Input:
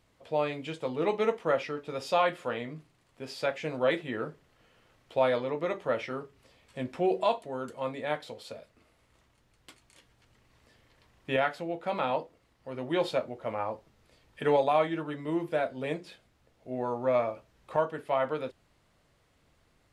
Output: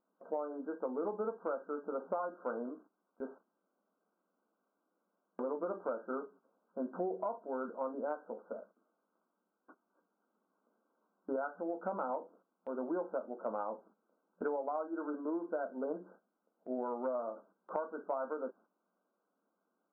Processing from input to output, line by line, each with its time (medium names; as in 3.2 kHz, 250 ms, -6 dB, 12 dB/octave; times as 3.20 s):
3.38–5.39 s: room tone
whole clip: FFT band-pass 180–1600 Hz; gate -57 dBFS, range -11 dB; compression 12:1, threshold -33 dBFS